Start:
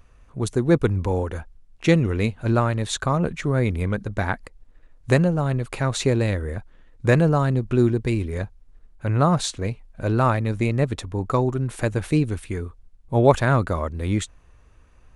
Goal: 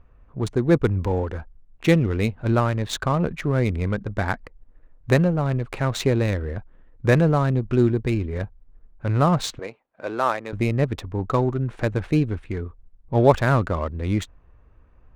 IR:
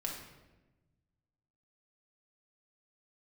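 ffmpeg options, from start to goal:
-filter_complex "[0:a]asettb=1/sr,asplit=3[s0][s1][s2];[s0]atrim=end=9.594[s3];[s1]atrim=start=9.59:end=10.53,asetpts=PTS-STARTPTS,afade=t=in:d=0.004:c=qsin,afade=t=out:st=0.936:d=0.004:c=qsin,highpass=440[s4];[s2]atrim=start=10.526[s5];[s3][s4]acrossfade=d=0.004:c1=hsin:c2=qsin[s6];[s6][s5]acrossfade=d=0.004:c1=qsin:c2=hsin,adynamicsmooth=sensitivity=5:basefreq=1800"

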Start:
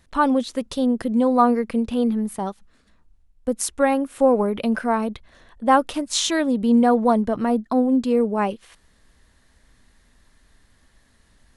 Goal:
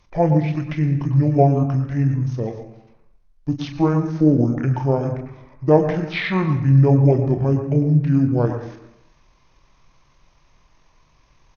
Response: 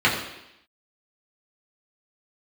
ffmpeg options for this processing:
-filter_complex "[0:a]asplit=2[s0][s1];[s1]adelay=34,volume=0.355[s2];[s0][s2]amix=inputs=2:normalize=0,asplit=2[s3][s4];[1:a]atrim=start_sample=2205,adelay=104[s5];[s4][s5]afir=irnorm=-1:irlink=0,volume=0.0531[s6];[s3][s6]amix=inputs=2:normalize=0,acrossover=split=5500[s7][s8];[s8]acompressor=threshold=0.00224:ratio=4:attack=1:release=60[s9];[s7][s9]amix=inputs=2:normalize=0,asetrate=25476,aresample=44100,atempo=1.73107,volume=1.12"

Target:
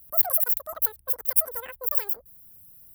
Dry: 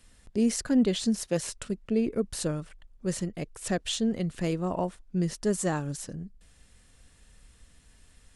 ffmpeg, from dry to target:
-af "asetrate=125244,aresample=44100,aexciter=amount=16:drive=8.5:freq=10000,volume=0.299"

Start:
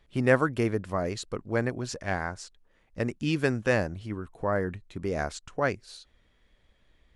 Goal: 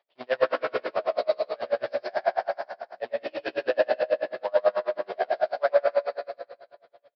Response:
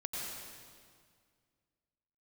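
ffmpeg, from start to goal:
-filter_complex "[0:a]asplit=2[s0][s1];[s1]aeval=exprs='sgn(val(0))*max(abs(val(0))-0.00891,0)':c=same,volume=0.447[s2];[s0][s2]amix=inputs=2:normalize=0,acrusher=bits=2:mode=log:mix=0:aa=0.000001,aresample=11025,asoftclip=type=tanh:threshold=0.2,aresample=44100,highpass=f=630:t=q:w=4.9,asplit=2[s3][s4];[s4]adelay=16,volume=0.794[s5];[s3][s5]amix=inputs=2:normalize=0,aecho=1:1:259:0.237[s6];[1:a]atrim=start_sample=2205[s7];[s6][s7]afir=irnorm=-1:irlink=0,aeval=exprs='val(0)*pow(10,-33*(0.5-0.5*cos(2*PI*9.2*n/s))/20)':c=same,volume=0.75"

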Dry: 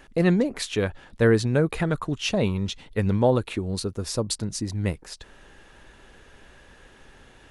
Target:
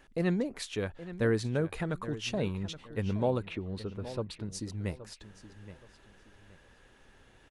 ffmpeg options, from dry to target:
-filter_complex "[0:a]asettb=1/sr,asplit=3[s0][s1][s2];[s0]atrim=end=3.424[s3];[s1]atrim=start=3.42:end=4.45,asetpts=PTS-STARTPTS,afade=t=in:d=0.004:c=qsin,afade=t=out:st=1.026:d=0.004:c=qsin,highshelf=f=4400:t=q:w=1.5:g=-13.5[s4];[s2]atrim=start=4.446[s5];[s3][s4]acrossfade=d=0.004:c1=hsin:c2=qsin[s6];[s6][s5]acrossfade=d=0.004:c1=qsin:c2=hsin,asplit=2[s7][s8];[s8]adelay=822,lowpass=f=4800:p=1,volume=0.2,asplit=2[s9][s10];[s10]adelay=822,lowpass=f=4800:p=1,volume=0.29,asplit=2[s11][s12];[s12]adelay=822,lowpass=f=4800:p=1,volume=0.29[s13];[s7][s9][s11][s13]amix=inputs=4:normalize=0,volume=0.355"

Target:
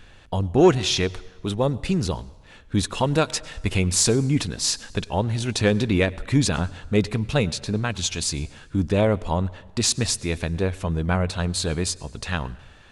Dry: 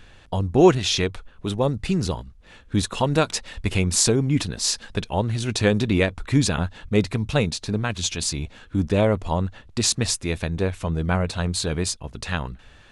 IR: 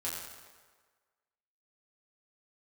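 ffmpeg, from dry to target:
-filter_complex "[0:a]asplit=2[s0][s1];[1:a]atrim=start_sample=2205,adelay=97[s2];[s1][s2]afir=irnorm=-1:irlink=0,volume=0.0631[s3];[s0][s3]amix=inputs=2:normalize=0,asoftclip=type=tanh:threshold=0.631"

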